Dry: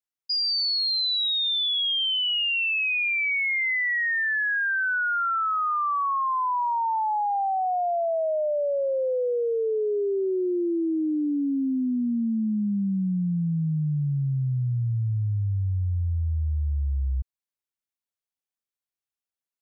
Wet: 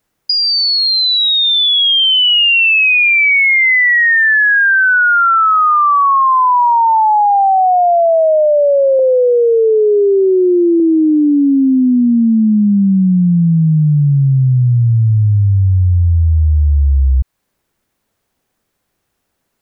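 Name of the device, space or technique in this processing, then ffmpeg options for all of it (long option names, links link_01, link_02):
mastering chain: -filter_complex "[0:a]asettb=1/sr,asplit=3[link_01][link_02][link_03];[link_01]atrim=end=8.994[link_04];[link_02]atrim=start=8.99:end=10.8,asetpts=PTS-STARTPTS,afade=type=in:duration=0.004:curve=qsin,afade=type=out:start_time=1.806:duration=0.004:curve=qsin,lowpass=frequency=1700:width=0.5412,lowpass=frequency=1700:width=1.3066[link_05];[link_03]atrim=start=10.796[link_06];[link_04][link_05]acrossfade=duration=0.004:curve1=hsin:curve2=qsin[link_07];[link_07][link_06]acrossfade=duration=0.004:curve1=qsin:curve2=hsin,equalizer=frequency=1700:width_type=o:width=0.77:gain=3,acrossover=split=790|2300[link_08][link_09][link_10];[link_08]acompressor=threshold=-37dB:ratio=4[link_11];[link_09]acompressor=threshold=-32dB:ratio=4[link_12];[link_10]acompressor=threshold=-35dB:ratio=4[link_13];[link_11][link_12][link_13]amix=inputs=3:normalize=0,acompressor=threshold=-32dB:ratio=2,tiltshelf=frequency=970:gain=7.5,alimiter=level_in=33.5dB:limit=-1dB:release=50:level=0:latency=1,volume=-6dB"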